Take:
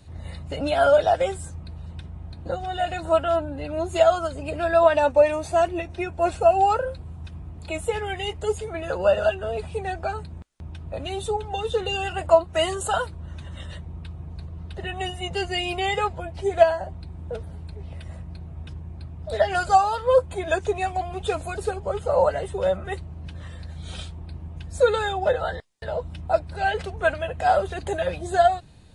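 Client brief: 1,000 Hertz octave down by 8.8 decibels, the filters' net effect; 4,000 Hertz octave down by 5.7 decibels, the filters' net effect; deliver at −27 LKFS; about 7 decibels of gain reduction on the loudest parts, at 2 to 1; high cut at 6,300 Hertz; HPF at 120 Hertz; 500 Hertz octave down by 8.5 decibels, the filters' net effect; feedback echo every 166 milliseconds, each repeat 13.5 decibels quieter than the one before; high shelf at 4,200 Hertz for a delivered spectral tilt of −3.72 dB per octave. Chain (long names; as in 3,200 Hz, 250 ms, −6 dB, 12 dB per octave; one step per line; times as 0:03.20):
high-pass filter 120 Hz
low-pass filter 6,300 Hz
parametric band 500 Hz −7.5 dB
parametric band 1,000 Hz −9 dB
parametric band 4,000 Hz −5 dB
high-shelf EQ 4,200 Hz −4.5 dB
downward compressor 2 to 1, threshold −32 dBFS
repeating echo 166 ms, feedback 21%, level −13.5 dB
level +9.5 dB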